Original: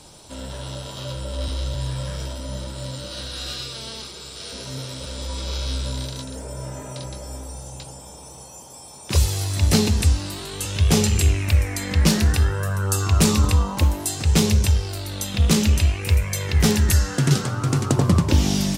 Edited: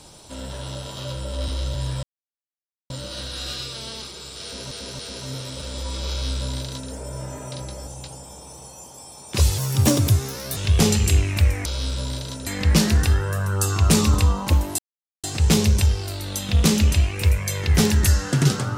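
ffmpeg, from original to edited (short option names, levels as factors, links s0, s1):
-filter_complex "[0:a]asplit=11[s0][s1][s2][s3][s4][s5][s6][s7][s8][s9][s10];[s0]atrim=end=2.03,asetpts=PTS-STARTPTS,afade=t=out:st=2.026:d=0.004:c=hsin[s11];[s1]atrim=start=2.03:end=2.9,asetpts=PTS-STARTPTS,volume=0[s12];[s2]atrim=start=2.9:end=4.712,asetpts=PTS-STARTPTS,afade=t=in:d=0.004:c=hsin[s13];[s3]atrim=start=4.428:end=4.712[s14];[s4]atrim=start=4.428:end=7.312[s15];[s5]atrim=start=7.628:end=9.344[s16];[s6]atrim=start=9.34:end=10.68,asetpts=PTS-STARTPTS,asetrate=59976,aresample=44100,atrim=end_sample=43451,asetpts=PTS-STARTPTS[s17];[s7]atrim=start=10.676:end=11.772[s18];[s8]atrim=start=5.528:end=6.342[s19];[s9]atrim=start=11.768:end=14.09,asetpts=PTS-STARTPTS,afade=t=out:st=2.318:d=0.004:c=hsin,apad=pad_dur=0.45[s20];[s10]atrim=start=14.09,asetpts=PTS-STARTPTS,afade=t=in:d=0.004:c=hsin[s21];[s11][s12][s13]concat=n=3:v=0:a=1[s22];[s22][s14]acrossfade=d=0.004:c1=hsin:c2=hsin[s23];[s23][s15]acrossfade=d=0.004:c1=hsin:c2=hsin[s24];[s24][s16]acrossfade=d=0.004:c1=hsin:c2=hsin[s25];[s25][s17]acrossfade=d=0.004:c1=hsin:c2=hsin[s26];[s26][s18]acrossfade=d=0.004:c1=hsin:c2=hsin[s27];[s27][s19]acrossfade=d=0.004:c1=hsin:c2=hsin[s28];[s20][s21]concat=n=2:v=0:a=1[s29];[s28][s29]acrossfade=d=0.004:c1=hsin:c2=hsin"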